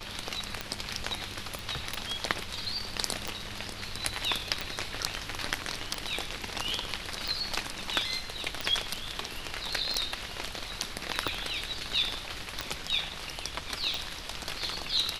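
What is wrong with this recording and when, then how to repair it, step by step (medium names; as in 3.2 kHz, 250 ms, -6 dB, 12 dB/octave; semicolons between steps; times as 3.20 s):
tick 45 rpm -15 dBFS
1.59 s: pop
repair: de-click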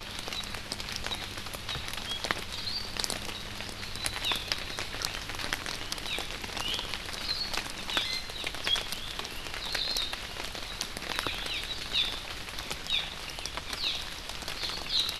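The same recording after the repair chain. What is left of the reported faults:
nothing left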